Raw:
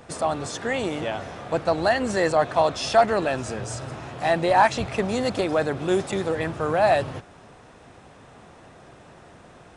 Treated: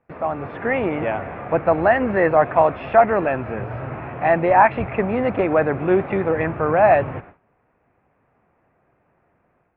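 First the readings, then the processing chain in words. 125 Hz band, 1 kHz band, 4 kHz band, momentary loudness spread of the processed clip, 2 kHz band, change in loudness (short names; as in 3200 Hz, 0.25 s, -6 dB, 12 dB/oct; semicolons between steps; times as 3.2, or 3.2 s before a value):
+4.0 dB, +4.5 dB, under -10 dB, 13 LU, +4.0 dB, +4.0 dB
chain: elliptic low-pass 2400 Hz, stop band 70 dB; gate with hold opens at -36 dBFS; AGC gain up to 6 dB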